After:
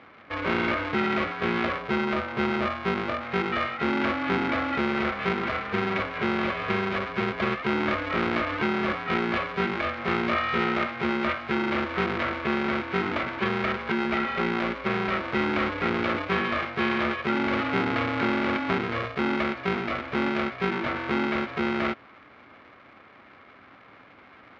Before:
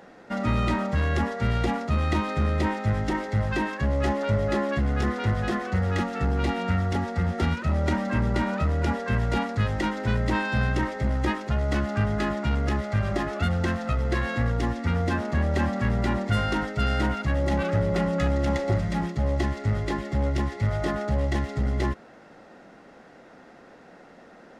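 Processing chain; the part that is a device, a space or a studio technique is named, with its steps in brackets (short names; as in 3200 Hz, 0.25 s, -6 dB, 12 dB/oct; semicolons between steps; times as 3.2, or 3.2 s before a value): 1.78–3.25 LPF 1200 Hz 24 dB/oct; ring modulator pedal into a guitar cabinet (polarity switched at an audio rate 290 Hz; speaker cabinet 110–3800 Hz, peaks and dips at 160 Hz -4 dB, 280 Hz +5 dB, 490 Hz -4 dB, 910 Hz -4 dB, 1300 Hz +8 dB, 2200 Hz +7 dB); gain -2.5 dB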